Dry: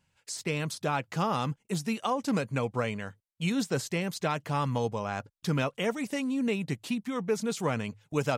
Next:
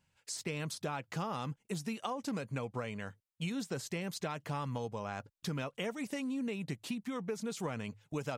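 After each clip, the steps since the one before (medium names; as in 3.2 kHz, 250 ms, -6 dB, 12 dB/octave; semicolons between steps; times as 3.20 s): compression, threshold -31 dBFS, peak gain reduction 8.5 dB; trim -3 dB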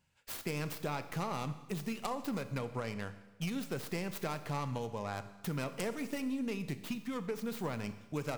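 tracing distortion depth 0.38 ms; Schroeder reverb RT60 1.1 s, combs from 27 ms, DRR 11 dB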